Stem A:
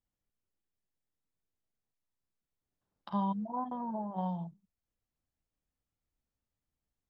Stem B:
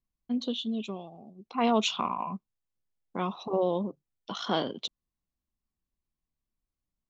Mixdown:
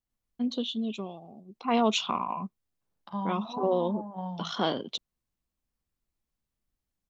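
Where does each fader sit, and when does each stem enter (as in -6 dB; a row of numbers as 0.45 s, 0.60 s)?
-1.5 dB, +0.5 dB; 0.00 s, 0.10 s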